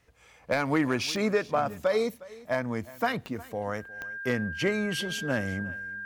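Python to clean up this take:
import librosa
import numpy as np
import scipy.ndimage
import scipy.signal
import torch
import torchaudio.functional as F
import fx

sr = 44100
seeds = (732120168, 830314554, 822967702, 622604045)

y = fx.fix_declip(x, sr, threshold_db=-16.0)
y = fx.fix_declick_ar(y, sr, threshold=10.0)
y = fx.notch(y, sr, hz=1600.0, q=30.0)
y = fx.fix_echo_inverse(y, sr, delay_ms=360, level_db=-20.0)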